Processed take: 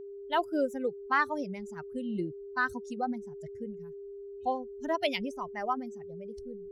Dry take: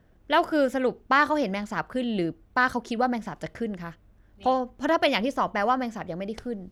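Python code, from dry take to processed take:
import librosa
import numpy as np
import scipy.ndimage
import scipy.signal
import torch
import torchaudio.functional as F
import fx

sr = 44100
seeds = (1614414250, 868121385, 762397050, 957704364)

y = fx.bin_expand(x, sr, power=2.0)
y = y + 10.0 ** (-37.0 / 20.0) * np.sin(2.0 * np.pi * 400.0 * np.arange(len(y)) / sr)
y = F.gain(torch.from_numpy(y), -4.0).numpy()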